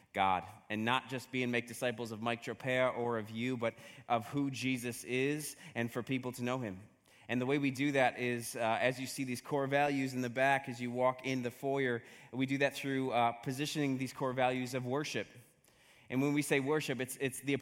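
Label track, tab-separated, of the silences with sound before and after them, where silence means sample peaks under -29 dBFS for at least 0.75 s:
15.210000	16.120000	silence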